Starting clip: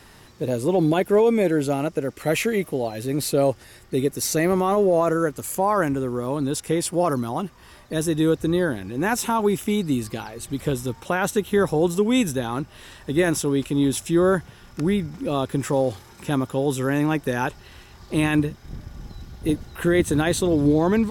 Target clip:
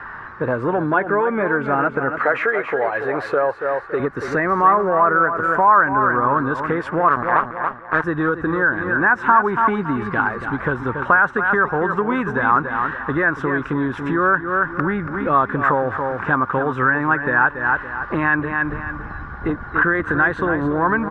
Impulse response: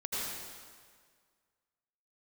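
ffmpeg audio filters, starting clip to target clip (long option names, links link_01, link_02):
-filter_complex "[0:a]asettb=1/sr,asplit=3[link_01][link_02][link_03];[link_01]atrim=end=2.184[link_04];[link_02]atrim=start=2.18:end=4,asetpts=PTS-STARTPTS,afade=type=in:duration=0.004:curve=qsin,afade=type=out:start_time=1.816:duration=0.004:curve=qsin,lowshelf=frequency=320:width_type=q:width=1.5:gain=-10[link_05];[link_03]atrim=start=3.996[link_06];[link_04][link_05]acrossfade=duration=0.004:curve1=hsin:curve2=qsin[link_07];[link_07][link_06]acrossfade=duration=0.004:curve1=qsin:curve2=hsin,asettb=1/sr,asplit=3[link_08][link_09][link_10];[link_08]atrim=end=7.084[link_11];[link_09]atrim=start=7.08:end=8.04,asetpts=PTS-STARTPTS,afade=type=in:duration=0.004:curve=qsin,afade=type=out:start_time=0.956:duration=0.004:curve=qsin,aeval=exprs='0.266*(cos(1*acos(clip(val(0)/0.266,-1,1)))-cos(1*PI/2))+0.0473*(cos(7*acos(clip(val(0)/0.266,-1,1)))-cos(7*PI/2))':channel_layout=same[link_12];[link_10]atrim=start=8.036[link_13];[link_11][link_12]acrossfade=duration=0.004:curve1=hsin:curve2=qsin[link_14];[link_14][link_13]acrossfade=duration=0.004:curve1=qsin:curve2=hsin,asplit=2[link_15][link_16];[link_16]asoftclip=type=hard:threshold=-19.5dB,volume=-10.5dB[link_17];[link_15][link_17]amix=inputs=2:normalize=0,lowpass=frequency=1600:width_type=q:width=5.3,aecho=1:1:281|562|843:0.316|0.098|0.0304,acompressor=threshold=-21dB:ratio=5,equalizer=frequency=1100:width_type=o:width=0.93:gain=13.5,volume=1.5dB"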